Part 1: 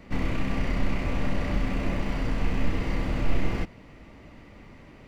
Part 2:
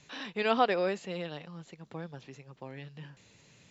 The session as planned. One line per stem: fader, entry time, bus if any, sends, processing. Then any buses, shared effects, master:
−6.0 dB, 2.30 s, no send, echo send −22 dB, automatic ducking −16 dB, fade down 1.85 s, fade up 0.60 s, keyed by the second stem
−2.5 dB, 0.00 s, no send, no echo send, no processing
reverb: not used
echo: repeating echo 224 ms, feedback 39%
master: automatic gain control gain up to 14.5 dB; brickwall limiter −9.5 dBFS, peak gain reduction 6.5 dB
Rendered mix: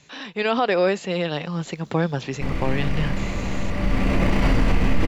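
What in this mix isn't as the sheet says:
stem 1 −6.0 dB → +2.5 dB
stem 2 −2.5 dB → +5.0 dB

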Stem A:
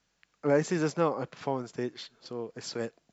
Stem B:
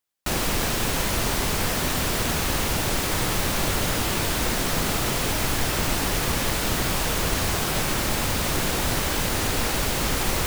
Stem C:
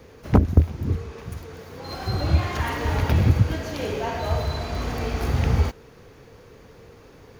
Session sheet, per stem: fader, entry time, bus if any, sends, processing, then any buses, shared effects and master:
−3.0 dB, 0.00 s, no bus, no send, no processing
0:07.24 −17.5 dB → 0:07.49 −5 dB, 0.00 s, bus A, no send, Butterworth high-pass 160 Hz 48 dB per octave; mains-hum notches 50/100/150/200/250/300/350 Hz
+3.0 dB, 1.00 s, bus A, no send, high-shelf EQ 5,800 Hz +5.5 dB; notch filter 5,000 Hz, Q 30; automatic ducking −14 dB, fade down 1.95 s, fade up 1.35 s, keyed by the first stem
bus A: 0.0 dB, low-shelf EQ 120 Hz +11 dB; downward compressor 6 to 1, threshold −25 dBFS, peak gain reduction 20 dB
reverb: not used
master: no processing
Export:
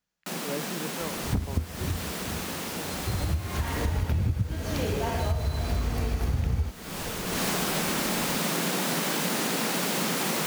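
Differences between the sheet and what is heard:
stem A −3.0 dB → −11.0 dB
stem B −17.5 dB → −9.0 dB
master: extra parametric band 190 Hz +3 dB 0.72 octaves

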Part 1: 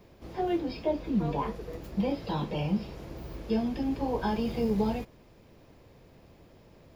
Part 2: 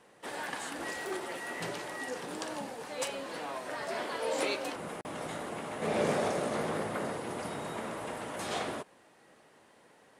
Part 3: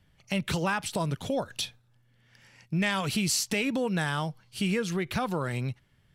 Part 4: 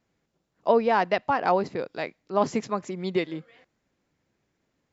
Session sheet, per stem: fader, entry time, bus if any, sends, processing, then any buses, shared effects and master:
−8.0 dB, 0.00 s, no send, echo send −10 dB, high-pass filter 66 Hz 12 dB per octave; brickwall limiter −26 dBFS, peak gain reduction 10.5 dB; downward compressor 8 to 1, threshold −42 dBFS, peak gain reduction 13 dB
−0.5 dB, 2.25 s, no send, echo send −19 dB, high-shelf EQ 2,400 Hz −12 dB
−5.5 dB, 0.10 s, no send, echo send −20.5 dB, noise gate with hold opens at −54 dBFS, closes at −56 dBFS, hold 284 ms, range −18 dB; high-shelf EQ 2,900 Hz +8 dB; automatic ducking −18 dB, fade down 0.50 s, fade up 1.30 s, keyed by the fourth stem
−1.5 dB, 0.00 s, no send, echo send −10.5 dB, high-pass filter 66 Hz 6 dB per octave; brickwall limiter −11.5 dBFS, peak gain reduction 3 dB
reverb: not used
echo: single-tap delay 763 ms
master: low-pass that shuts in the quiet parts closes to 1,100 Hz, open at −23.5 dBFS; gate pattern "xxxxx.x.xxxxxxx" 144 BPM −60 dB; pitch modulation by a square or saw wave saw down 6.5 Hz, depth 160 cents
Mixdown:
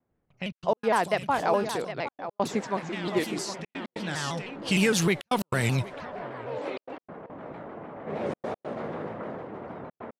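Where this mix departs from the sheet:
stem 1: muted
stem 3 −5.5 dB → +5.5 dB

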